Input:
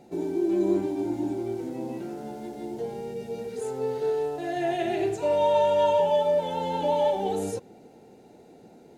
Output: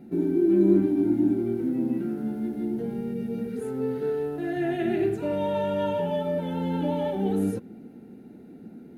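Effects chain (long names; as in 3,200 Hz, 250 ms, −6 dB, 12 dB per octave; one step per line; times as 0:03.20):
drawn EQ curve 130 Hz 0 dB, 230 Hz +9 dB, 520 Hz −9 dB, 950 Hz −12 dB, 1,400 Hz −1 dB, 7,200 Hz −18 dB, 11,000 Hz −4 dB
level +4 dB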